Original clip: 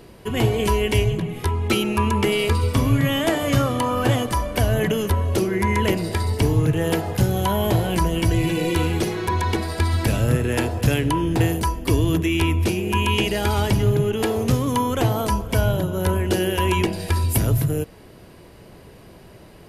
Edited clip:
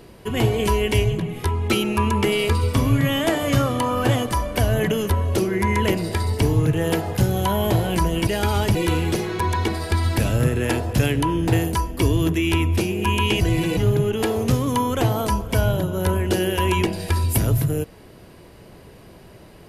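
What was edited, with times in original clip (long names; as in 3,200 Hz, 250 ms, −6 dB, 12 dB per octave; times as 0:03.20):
0:08.27–0:08.63: swap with 0:13.29–0:13.77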